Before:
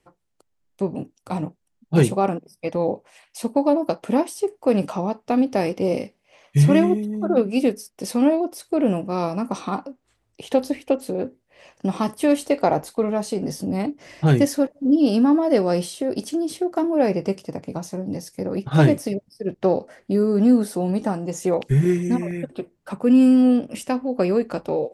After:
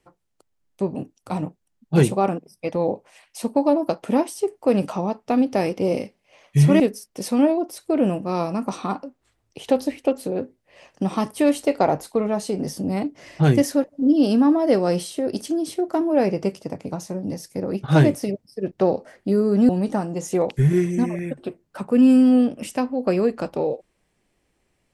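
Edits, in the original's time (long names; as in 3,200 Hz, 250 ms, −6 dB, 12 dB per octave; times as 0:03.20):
0:06.80–0:07.63: remove
0:20.52–0:20.81: remove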